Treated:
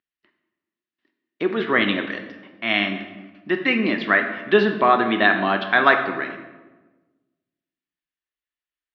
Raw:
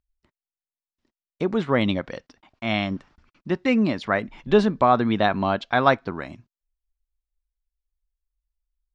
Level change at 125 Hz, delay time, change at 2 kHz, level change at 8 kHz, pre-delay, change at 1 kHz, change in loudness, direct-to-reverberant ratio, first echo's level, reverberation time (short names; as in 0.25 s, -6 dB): -6.0 dB, none, +9.5 dB, n/a, 7 ms, +2.0 dB, +2.5 dB, 5.0 dB, none, 1.2 s